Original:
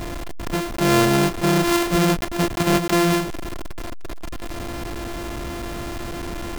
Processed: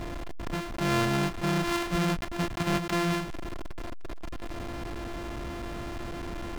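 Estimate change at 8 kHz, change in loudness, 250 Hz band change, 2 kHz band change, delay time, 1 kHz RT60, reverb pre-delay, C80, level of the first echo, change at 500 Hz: −12.0 dB, −9.5 dB, −9.5 dB, −7.5 dB, no echo audible, no reverb audible, no reverb audible, no reverb audible, no echo audible, −10.5 dB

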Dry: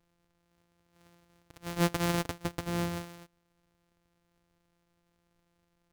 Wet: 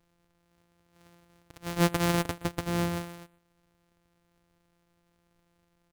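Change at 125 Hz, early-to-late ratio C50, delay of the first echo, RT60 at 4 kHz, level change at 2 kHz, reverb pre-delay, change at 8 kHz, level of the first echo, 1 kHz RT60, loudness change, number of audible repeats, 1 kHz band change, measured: +3.5 dB, no reverb audible, 122 ms, no reverb audible, +3.0 dB, no reverb audible, +3.0 dB, −22.0 dB, no reverb audible, +3.5 dB, 1, +3.5 dB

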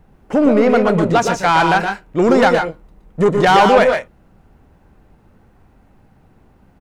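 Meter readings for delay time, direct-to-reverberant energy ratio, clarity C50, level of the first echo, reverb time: 119 ms, no reverb audible, no reverb audible, −5.5 dB, no reverb audible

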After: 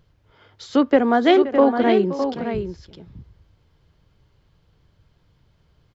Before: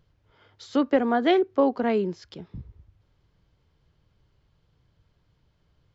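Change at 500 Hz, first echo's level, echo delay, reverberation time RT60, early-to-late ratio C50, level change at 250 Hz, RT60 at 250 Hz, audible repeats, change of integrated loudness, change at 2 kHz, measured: +6.5 dB, −15.0 dB, 524 ms, no reverb audible, no reverb audible, +6.0 dB, no reverb audible, 2, +5.0 dB, +6.0 dB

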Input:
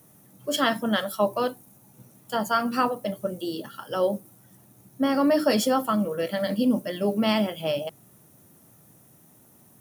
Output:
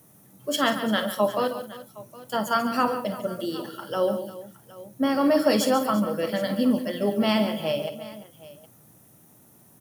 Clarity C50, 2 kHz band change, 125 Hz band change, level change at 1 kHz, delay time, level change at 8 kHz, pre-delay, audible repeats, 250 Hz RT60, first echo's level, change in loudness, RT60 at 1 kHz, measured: no reverb audible, +0.5 dB, +0.5 dB, +0.5 dB, 52 ms, +0.5 dB, no reverb audible, 5, no reverb audible, −12.5 dB, +0.5 dB, no reverb audible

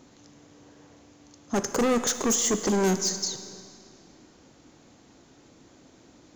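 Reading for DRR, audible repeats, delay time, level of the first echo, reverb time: 9.5 dB, no echo audible, no echo audible, no echo audible, 2.2 s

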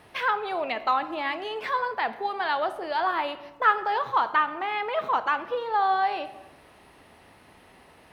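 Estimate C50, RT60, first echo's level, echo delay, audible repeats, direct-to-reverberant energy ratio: 14.0 dB, 1.0 s, no echo audible, no echo audible, no echo audible, 11.5 dB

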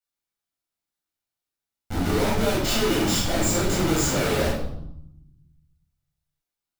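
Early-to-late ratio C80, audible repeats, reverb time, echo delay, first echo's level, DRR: 6.0 dB, no echo audible, 0.80 s, no echo audible, no echo audible, −6.0 dB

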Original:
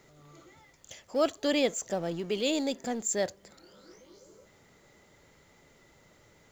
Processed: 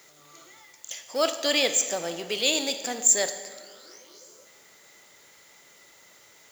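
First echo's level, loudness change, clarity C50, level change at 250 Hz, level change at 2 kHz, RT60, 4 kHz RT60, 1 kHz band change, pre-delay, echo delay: no echo audible, +6.5 dB, 10.0 dB, −3.5 dB, +8.0 dB, 1.6 s, 1.2 s, +4.0 dB, 12 ms, no echo audible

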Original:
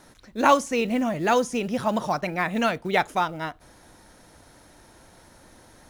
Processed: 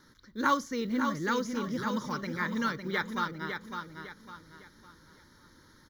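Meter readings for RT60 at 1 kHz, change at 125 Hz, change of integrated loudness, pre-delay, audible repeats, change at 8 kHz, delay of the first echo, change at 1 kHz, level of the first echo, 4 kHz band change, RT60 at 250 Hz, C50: no reverb audible, −5.0 dB, −7.5 dB, no reverb audible, 4, −8.5 dB, 555 ms, −8.5 dB, −6.5 dB, −6.0 dB, no reverb audible, no reverb audible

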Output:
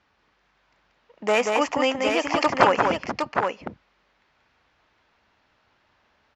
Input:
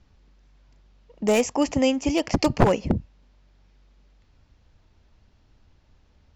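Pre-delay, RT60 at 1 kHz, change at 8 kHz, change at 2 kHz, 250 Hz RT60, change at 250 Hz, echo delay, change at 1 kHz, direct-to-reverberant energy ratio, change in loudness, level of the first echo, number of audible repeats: no reverb audible, no reverb audible, −4.0 dB, +8.0 dB, no reverb audible, −5.0 dB, 184 ms, +7.5 dB, no reverb audible, +0.5 dB, −4.0 dB, 2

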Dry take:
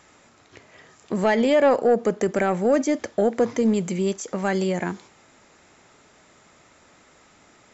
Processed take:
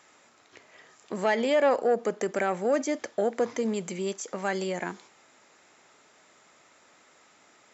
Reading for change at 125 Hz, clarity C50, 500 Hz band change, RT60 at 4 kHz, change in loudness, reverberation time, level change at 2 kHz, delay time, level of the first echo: −11.0 dB, no reverb audible, −5.5 dB, no reverb audible, −6.0 dB, no reverb audible, −3.0 dB, no echo audible, no echo audible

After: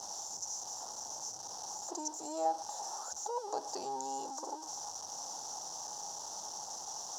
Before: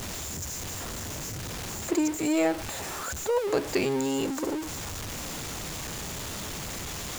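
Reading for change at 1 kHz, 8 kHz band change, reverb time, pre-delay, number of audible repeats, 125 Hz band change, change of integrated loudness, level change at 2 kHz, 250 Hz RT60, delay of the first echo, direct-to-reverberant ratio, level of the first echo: −1.0 dB, −3.5 dB, no reverb audible, no reverb audible, no echo audible, below −25 dB, −9.0 dB, −25.0 dB, no reverb audible, no echo audible, no reverb audible, no echo audible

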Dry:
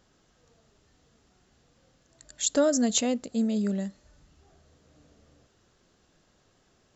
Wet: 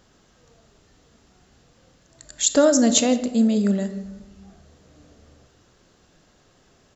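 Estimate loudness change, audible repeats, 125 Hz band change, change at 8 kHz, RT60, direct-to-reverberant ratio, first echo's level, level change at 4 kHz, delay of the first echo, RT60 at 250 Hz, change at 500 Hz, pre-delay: +7.5 dB, 1, can't be measured, can't be measured, 1.2 s, 9.5 dB, −21.5 dB, +7.0 dB, 166 ms, 1.5 s, +7.0 dB, 23 ms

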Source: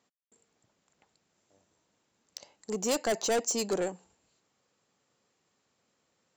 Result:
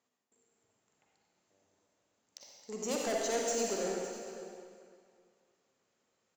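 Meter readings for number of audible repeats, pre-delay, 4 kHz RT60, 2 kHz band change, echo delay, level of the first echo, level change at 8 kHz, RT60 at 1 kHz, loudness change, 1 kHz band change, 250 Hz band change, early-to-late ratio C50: 1, 39 ms, 2.0 s, −3.5 dB, 557 ms, −15.0 dB, −3.5 dB, 2.3 s, −4.5 dB, −3.0 dB, −4.0 dB, −1.5 dB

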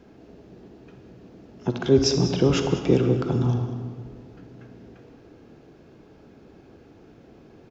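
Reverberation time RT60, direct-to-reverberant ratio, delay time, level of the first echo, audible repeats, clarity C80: 2.0 s, 6.0 dB, 196 ms, −14.5 dB, 1, 7.5 dB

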